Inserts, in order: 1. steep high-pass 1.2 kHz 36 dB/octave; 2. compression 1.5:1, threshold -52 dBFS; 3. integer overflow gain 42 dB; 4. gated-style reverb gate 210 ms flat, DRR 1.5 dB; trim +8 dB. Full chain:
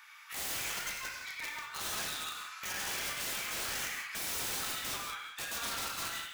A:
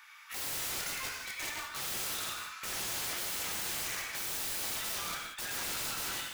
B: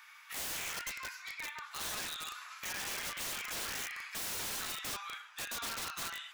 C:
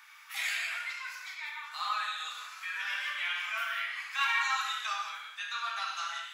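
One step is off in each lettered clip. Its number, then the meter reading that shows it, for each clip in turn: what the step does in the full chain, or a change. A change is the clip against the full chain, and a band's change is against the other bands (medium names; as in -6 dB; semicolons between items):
2, mean gain reduction 4.5 dB; 4, crest factor change -6.5 dB; 3, crest factor change +5.0 dB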